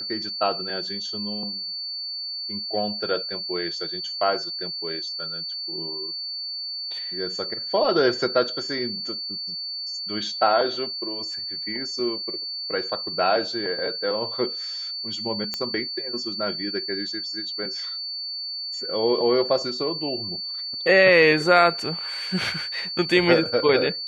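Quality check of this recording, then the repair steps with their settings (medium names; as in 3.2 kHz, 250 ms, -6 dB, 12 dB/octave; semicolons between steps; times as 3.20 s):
whine 4.5 kHz -29 dBFS
15.54 s: pop -12 dBFS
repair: de-click; band-stop 4.5 kHz, Q 30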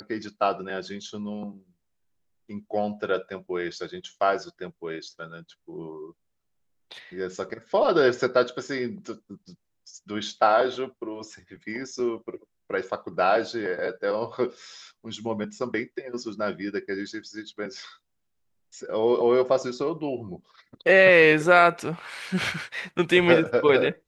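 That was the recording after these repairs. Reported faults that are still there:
nothing left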